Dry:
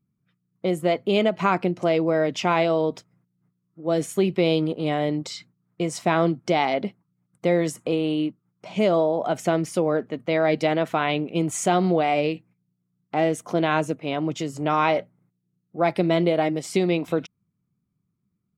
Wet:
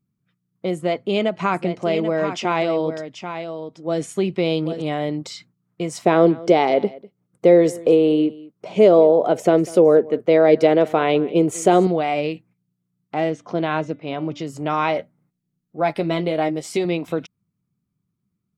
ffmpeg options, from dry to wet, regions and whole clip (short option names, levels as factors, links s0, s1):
-filter_complex "[0:a]asettb=1/sr,asplit=3[s0][s1][s2];[s0]atrim=end=0.754[s3];[s1]atrim=start=0.75:end=4.82,asetpts=PTS-STARTPTS,afade=t=in:d=0.004:c=qsin,afade=t=out:st=4.066:d=0.004:c=qsin,lowpass=f=10000:w=0.5412,lowpass=f=10000:w=1.3066,aecho=1:1:786:0.355,atrim=end_sample=179487[s4];[s2]atrim=start=4.816[s5];[s3][s4]acrossfade=d=0.004:c1=hsin:c2=qsin[s6];[s6][s5]acrossfade=d=0.004:c1=qsin:c2=hsin,asettb=1/sr,asplit=3[s7][s8][s9];[s7]atrim=end=6.054[s10];[s8]atrim=start=6.05:end=11.87,asetpts=PTS-STARTPTS,afade=t=in:d=0.004:c=qsin,afade=t=out:st=5.816:d=0.004:c=qsin,equalizer=f=440:t=o:w=1:g=12.5,aecho=1:1:198:0.0891,atrim=end_sample=256662[s11];[s9]atrim=start=11.866[s12];[s10][s11]acrossfade=d=0.004:c1=hsin:c2=qsin[s13];[s13][s12]acrossfade=d=0.004:c1=qsin:c2=hsin,asettb=1/sr,asplit=3[s14][s15][s16];[s14]atrim=end=13.304[s17];[s15]atrim=start=13.3:end=14.47,asetpts=PTS-STARTPTS,afade=t=in:d=0.004:c=qsin,afade=t=out:st=1.166:d=0.004:c=qsin,lowpass=f=5300:t=q:w=1.9,aemphasis=mode=reproduction:type=75kf,bandreject=f=291.8:t=h:w=4,bandreject=f=583.6:t=h:w=4,bandreject=f=875.4:t=h:w=4,bandreject=f=1167.2:t=h:w=4,bandreject=f=1459:t=h:w=4,bandreject=f=1750.8:t=h:w=4,bandreject=f=2042.6:t=h:w=4,bandreject=f=2334.4:t=h:w=4,bandreject=f=2626.2:t=h:w=4,bandreject=f=2918:t=h:w=4,bandreject=f=3209.8:t=h:w=4,bandreject=f=3501.6:t=h:w=4,bandreject=f=3793.4:t=h:w=4[s18];[s16]atrim=start=14.466[s19];[s17][s18]acrossfade=d=0.004:c1=hsin:c2=qsin[s20];[s20][s19]acrossfade=d=0.004:c1=qsin:c2=hsin,asettb=1/sr,asplit=3[s21][s22][s23];[s21]atrim=end=14.984[s24];[s22]atrim=start=14.98:end=16.85,asetpts=PTS-STARTPTS,afade=t=in:d=0.004:c=qsin,afade=t=out:st=1.866:d=0.004:c=qsin,asubboost=boost=11:cutoff=51,asplit=2[s25][s26];[s26]adelay=13,volume=0.398[s27];[s25][s27]amix=inputs=2:normalize=0,atrim=end_sample=82467[s28];[s23]atrim=start=16.846[s29];[s24][s28]acrossfade=d=0.004:c1=hsin:c2=qsin[s30];[s30][s29]acrossfade=d=0.004:c1=qsin:c2=hsin"